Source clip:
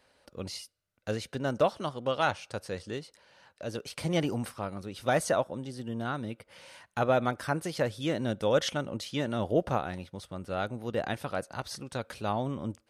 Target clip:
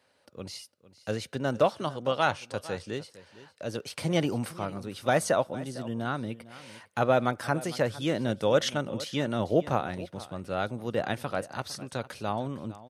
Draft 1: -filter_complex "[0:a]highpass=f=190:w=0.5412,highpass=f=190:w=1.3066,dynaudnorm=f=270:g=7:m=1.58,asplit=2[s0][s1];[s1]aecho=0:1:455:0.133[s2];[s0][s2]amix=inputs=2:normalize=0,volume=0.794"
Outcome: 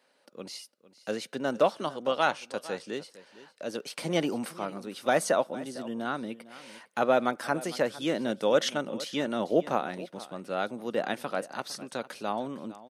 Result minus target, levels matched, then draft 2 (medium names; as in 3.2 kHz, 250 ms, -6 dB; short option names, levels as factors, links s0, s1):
125 Hz band -9.5 dB
-filter_complex "[0:a]highpass=f=83:w=0.5412,highpass=f=83:w=1.3066,dynaudnorm=f=270:g=7:m=1.58,asplit=2[s0][s1];[s1]aecho=0:1:455:0.133[s2];[s0][s2]amix=inputs=2:normalize=0,volume=0.794"